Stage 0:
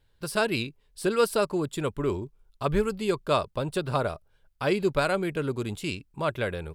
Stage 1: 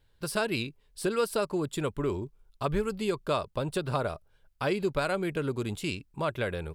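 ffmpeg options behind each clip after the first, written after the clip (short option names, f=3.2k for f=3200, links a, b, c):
-af "acompressor=threshold=-27dB:ratio=2"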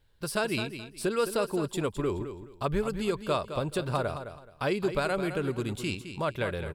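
-af "aecho=1:1:213|426|639:0.316|0.0759|0.0182"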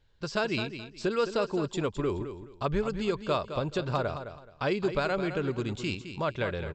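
-af "aresample=16000,aresample=44100"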